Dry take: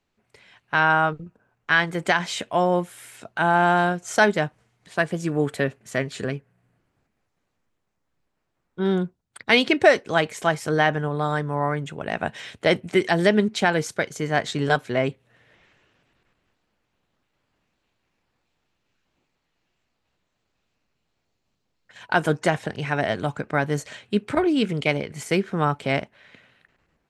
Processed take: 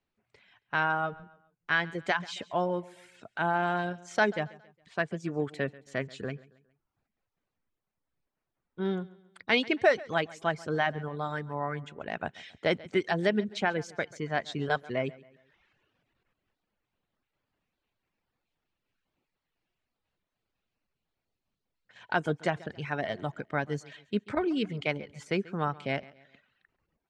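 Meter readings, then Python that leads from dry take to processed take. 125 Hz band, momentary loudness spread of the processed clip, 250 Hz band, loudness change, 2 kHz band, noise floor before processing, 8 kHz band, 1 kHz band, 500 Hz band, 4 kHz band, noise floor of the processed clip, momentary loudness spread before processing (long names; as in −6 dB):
−9.0 dB, 10 LU, −8.5 dB, −8.5 dB, −8.0 dB, −76 dBFS, −14.5 dB, −8.5 dB, −8.0 dB, −8.5 dB, below −85 dBFS, 10 LU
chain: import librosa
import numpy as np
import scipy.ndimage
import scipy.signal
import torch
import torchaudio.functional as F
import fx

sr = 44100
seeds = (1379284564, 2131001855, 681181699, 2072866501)

y = fx.dereverb_blind(x, sr, rt60_s=0.78)
y = scipy.signal.sosfilt(scipy.signal.butter(2, 5200.0, 'lowpass', fs=sr, output='sos'), y)
y = fx.echo_feedback(y, sr, ms=137, feedback_pct=41, wet_db=-21)
y = F.gain(torch.from_numpy(y), -7.5).numpy()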